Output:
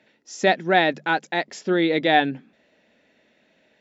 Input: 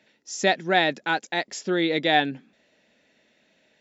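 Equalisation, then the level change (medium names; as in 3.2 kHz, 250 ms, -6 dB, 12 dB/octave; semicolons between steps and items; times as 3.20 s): treble shelf 4.5 kHz -11.5 dB; hum notches 50/100/150/200 Hz; +3.5 dB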